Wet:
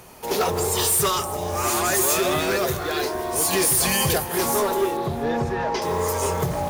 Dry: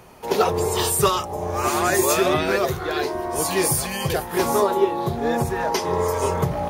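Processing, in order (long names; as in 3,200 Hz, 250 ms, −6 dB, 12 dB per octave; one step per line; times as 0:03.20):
high-shelf EQ 4,600 Hz +9.5 dB
floating-point word with a short mantissa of 2 bits
soft clipping −16.5 dBFS, distortion −11 dB
0:04.97–0:05.82: high-frequency loss of the air 160 metres
delay that swaps between a low-pass and a high-pass 158 ms, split 2,100 Hz, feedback 58%, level −12 dB
0:03.53–0:04.18: envelope flattener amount 70%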